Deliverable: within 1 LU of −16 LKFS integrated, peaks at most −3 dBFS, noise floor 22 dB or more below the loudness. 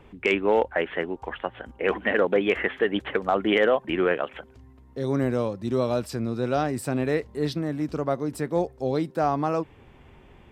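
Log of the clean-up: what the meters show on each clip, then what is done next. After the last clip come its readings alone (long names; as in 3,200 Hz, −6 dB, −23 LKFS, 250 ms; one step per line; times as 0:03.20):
integrated loudness −26.0 LKFS; sample peak −10.5 dBFS; target loudness −16.0 LKFS
→ level +10 dB
brickwall limiter −3 dBFS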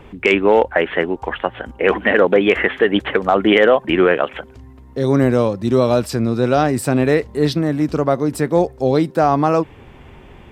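integrated loudness −16.5 LKFS; sample peak −3.0 dBFS; background noise floor −42 dBFS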